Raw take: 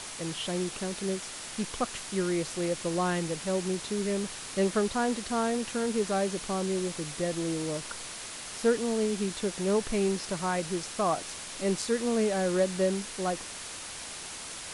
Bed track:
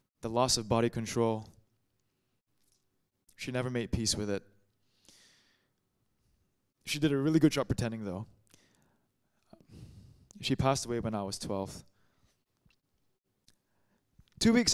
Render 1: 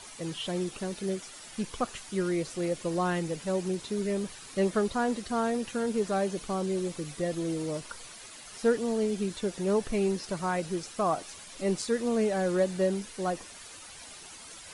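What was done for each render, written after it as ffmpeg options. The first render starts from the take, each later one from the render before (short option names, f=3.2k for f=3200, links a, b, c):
-af "afftdn=nr=10:nf=-41"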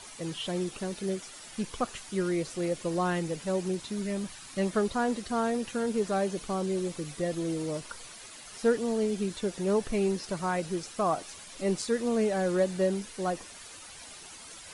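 -filter_complex "[0:a]asettb=1/sr,asplit=3[a][b][c];[a]atrim=end=3.804[d];[b]atrim=start=3.8:end=4.73,asetpts=PTS-STARTPTS,afade=t=in:d=0.004:c=qsin,afade=t=out:st=0.926:d=0.004:c=qsin,equalizer=f=440:t=o:w=0.39:g=-10[e];[c]atrim=start=4.726[f];[d][e]acrossfade=d=0.004:c1=hsin:c2=qsin[g];[g][f]acrossfade=d=0.004:c1=qsin:c2=hsin"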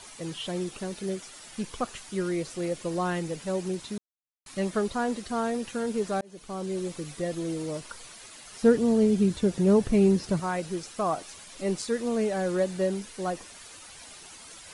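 -filter_complex "[0:a]asettb=1/sr,asplit=3[a][b][c];[a]atrim=end=8.624[d];[b]atrim=start=8.62:end=10.4,asetpts=PTS-STARTPTS,afade=t=in:d=0.004:c=qsin,afade=t=out:st=1.776:d=0.004:c=qsin,equalizer=f=97:w=0.33:g=12.5[e];[c]atrim=start=10.396[f];[d][e]acrossfade=d=0.004:c1=hsin:c2=qsin[g];[g][f]acrossfade=d=0.004:c1=qsin:c2=hsin,asplit=4[h][i][j][k];[h]atrim=end=3.98,asetpts=PTS-STARTPTS,afade=t=out:st=3.976:d=0.004:c=hsin[l];[i]atrim=start=3.98:end=4.46,asetpts=PTS-STARTPTS,volume=0[m];[j]atrim=start=4.46:end=6.21,asetpts=PTS-STARTPTS,afade=t=in:d=0.004:c=hsin,afade=t=out:st=1.746:d=0.004:c=hsin[n];[k]atrim=start=6.21,asetpts=PTS-STARTPTS,afade=t=in:d=0.78:c=qsin[o];[l][m][n][o]concat=n=4:v=0:a=1"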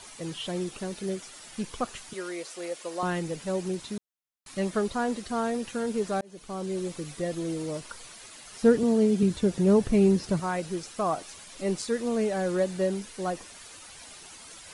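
-filter_complex "[0:a]asettb=1/sr,asplit=3[a][b][c];[a]atrim=end=2.134[d];[b]atrim=start=2.13:end=3.03,asetpts=PTS-STARTPTS,afade=t=in:d=0.004:c=qsin,afade=t=out:st=0.896:d=0.004:c=qsin,highpass=500[e];[c]atrim=start=3.026[f];[d][e]acrossfade=d=0.004:c1=hsin:c2=qsin[g];[g][f]acrossfade=d=0.004:c1=qsin:c2=hsin,asettb=1/sr,asplit=3[h][i][j];[h]atrim=end=8.834[k];[i]atrim=start=8.83:end=9.23,asetpts=PTS-STARTPTS,afade=t=in:d=0.004:c=qsin,afade=t=out:st=0.396:d=0.004:c=qsin,highpass=140[l];[j]atrim=start=9.226[m];[k][l]acrossfade=d=0.004:c1=hsin:c2=qsin[n];[n][m]acrossfade=d=0.004:c1=qsin:c2=hsin"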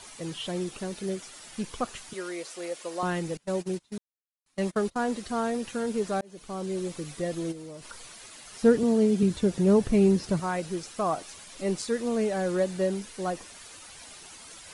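-filter_complex "[0:a]asettb=1/sr,asplit=3[a][b][c];[a]atrim=end=3.374[d];[b]atrim=start=3.37:end=5.14,asetpts=PTS-STARTPTS,afade=t=in:d=0.004:c=qsin,afade=t=out:st=1.766:d=0.004:c=qsin,agate=range=-25dB:threshold=-34dB:ratio=16:release=100:detection=peak[e];[c]atrim=start=5.136[f];[d][e]acrossfade=d=0.004:c1=hsin:c2=qsin[g];[g][f]acrossfade=d=0.004:c1=qsin:c2=hsin,asplit=3[h][i][j];[h]afade=t=out:st=7.51:d=0.02[k];[i]acompressor=threshold=-40dB:ratio=4:attack=3.2:release=140:knee=1:detection=peak,afade=t=in:st=7.51:d=0.02,afade=t=out:st=7.91:d=0.02[l];[j]afade=t=in:st=7.91:d=0.02[m];[k][l][m]amix=inputs=3:normalize=0"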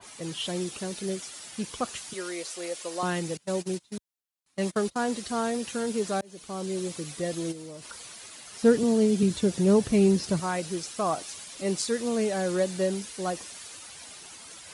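-af "highpass=63,adynamicequalizer=threshold=0.00398:dfrequency=2700:dqfactor=0.7:tfrequency=2700:tqfactor=0.7:attack=5:release=100:ratio=0.375:range=3:mode=boostabove:tftype=highshelf"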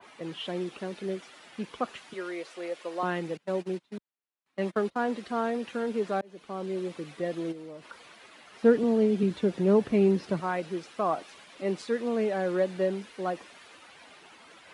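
-filter_complex "[0:a]acrossover=split=180 3200:gain=0.224 1 0.0891[a][b][c];[a][b][c]amix=inputs=3:normalize=0"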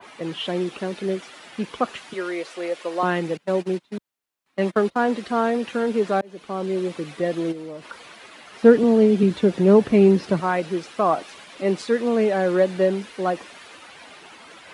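-af "volume=8dB"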